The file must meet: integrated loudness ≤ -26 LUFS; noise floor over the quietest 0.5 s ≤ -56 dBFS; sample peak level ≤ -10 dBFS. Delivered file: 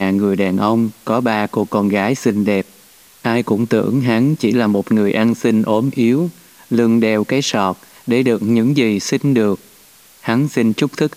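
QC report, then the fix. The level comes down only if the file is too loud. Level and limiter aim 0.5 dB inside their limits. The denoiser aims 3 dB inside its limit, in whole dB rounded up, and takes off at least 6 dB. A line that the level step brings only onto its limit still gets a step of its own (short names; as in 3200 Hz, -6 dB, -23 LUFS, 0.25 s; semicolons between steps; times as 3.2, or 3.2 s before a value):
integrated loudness -16.5 LUFS: fail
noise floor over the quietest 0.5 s -46 dBFS: fail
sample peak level -2.5 dBFS: fail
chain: denoiser 6 dB, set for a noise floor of -46 dBFS; gain -10 dB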